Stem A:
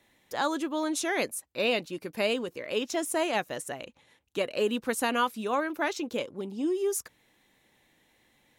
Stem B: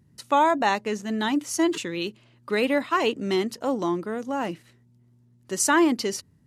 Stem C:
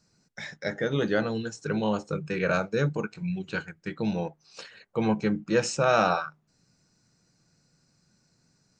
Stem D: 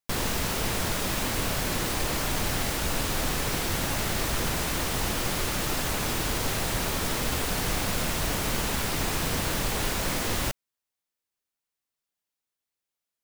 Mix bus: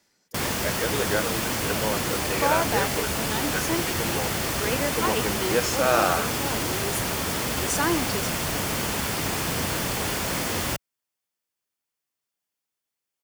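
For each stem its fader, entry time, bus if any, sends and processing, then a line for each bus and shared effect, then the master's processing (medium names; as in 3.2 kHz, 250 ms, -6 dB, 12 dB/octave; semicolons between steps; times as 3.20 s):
-6.5 dB, 0.00 s, no send, treble shelf 4.3 kHz +7.5 dB; auto duck -10 dB, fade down 0.35 s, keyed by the third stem
-5.0 dB, 2.10 s, no send, high-pass 270 Hz
+1.0 dB, 0.00 s, no send, high-pass 370 Hz 12 dB/octave
+2.0 dB, 0.25 s, no send, high-pass 74 Hz 12 dB/octave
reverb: none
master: band-stop 3.9 kHz, Q 15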